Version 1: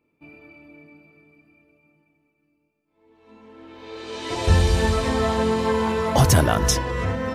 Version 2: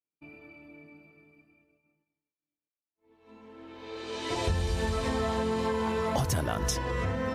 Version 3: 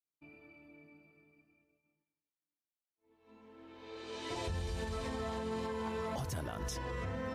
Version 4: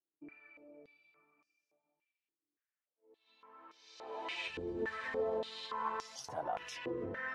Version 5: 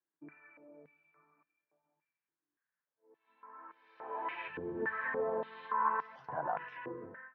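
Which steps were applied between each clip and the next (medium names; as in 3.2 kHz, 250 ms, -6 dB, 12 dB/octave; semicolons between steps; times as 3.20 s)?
expander -53 dBFS; compression 6:1, threshold -22 dBFS, peak gain reduction 10.5 dB; trim -3.5 dB
peak limiter -22.5 dBFS, peak gain reduction 6.5 dB; trim -7.5 dB
flange 0.46 Hz, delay 5.5 ms, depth 7 ms, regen -48%; step-sequenced band-pass 3.5 Hz 350–5600 Hz; trim +15.5 dB
fade out at the end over 0.75 s; cabinet simulation 110–2200 Hz, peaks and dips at 150 Hz +9 dB, 1 kHz +8 dB, 1.6 kHz +9 dB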